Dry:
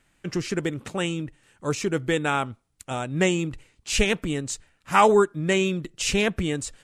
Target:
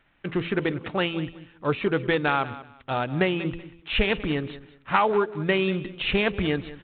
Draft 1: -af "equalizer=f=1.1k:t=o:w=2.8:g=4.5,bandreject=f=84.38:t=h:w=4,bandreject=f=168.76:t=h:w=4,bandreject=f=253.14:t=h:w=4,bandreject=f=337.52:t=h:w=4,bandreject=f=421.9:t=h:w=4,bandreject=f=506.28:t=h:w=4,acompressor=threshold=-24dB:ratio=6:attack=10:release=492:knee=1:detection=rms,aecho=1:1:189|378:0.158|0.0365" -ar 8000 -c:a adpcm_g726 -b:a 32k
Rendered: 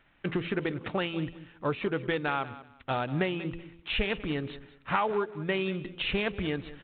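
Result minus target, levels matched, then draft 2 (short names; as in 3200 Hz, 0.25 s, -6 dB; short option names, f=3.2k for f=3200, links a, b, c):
compressor: peak gain reduction +6.5 dB
-af "equalizer=f=1.1k:t=o:w=2.8:g=4.5,bandreject=f=84.38:t=h:w=4,bandreject=f=168.76:t=h:w=4,bandreject=f=253.14:t=h:w=4,bandreject=f=337.52:t=h:w=4,bandreject=f=421.9:t=h:w=4,bandreject=f=506.28:t=h:w=4,acompressor=threshold=-16dB:ratio=6:attack=10:release=492:knee=1:detection=rms,aecho=1:1:189|378:0.158|0.0365" -ar 8000 -c:a adpcm_g726 -b:a 32k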